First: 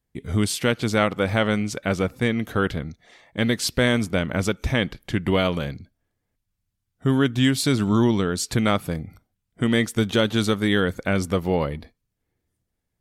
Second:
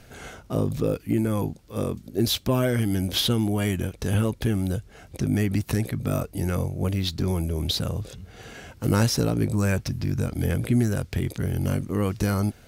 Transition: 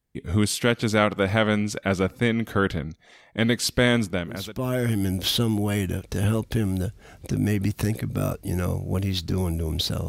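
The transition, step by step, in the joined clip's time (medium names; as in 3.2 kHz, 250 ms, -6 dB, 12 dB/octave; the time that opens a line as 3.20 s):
first
4.42 s: go over to second from 2.32 s, crossfade 0.86 s quadratic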